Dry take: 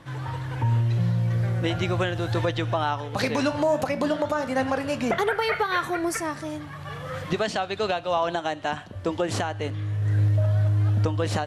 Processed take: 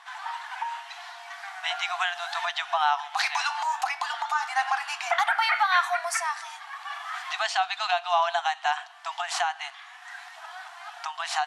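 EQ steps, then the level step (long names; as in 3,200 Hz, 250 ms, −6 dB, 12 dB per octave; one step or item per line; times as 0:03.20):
linear-phase brick-wall high-pass 670 Hz
low-pass filter 9,200 Hz 12 dB per octave
+3.5 dB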